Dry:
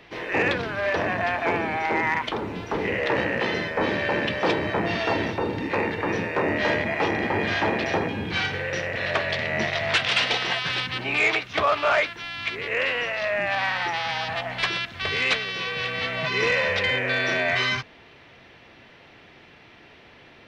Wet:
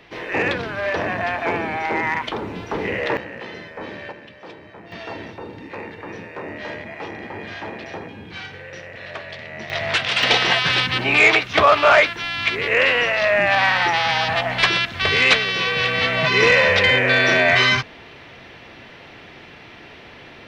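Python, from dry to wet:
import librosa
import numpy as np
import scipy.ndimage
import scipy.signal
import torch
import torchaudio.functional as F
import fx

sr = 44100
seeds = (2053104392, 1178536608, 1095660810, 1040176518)

y = fx.gain(x, sr, db=fx.steps((0.0, 1.5), (3.17, -9.0), (4.12, -17.0), (4.92, -8.5), (9.7, 1.5), (10.23, 8.0)))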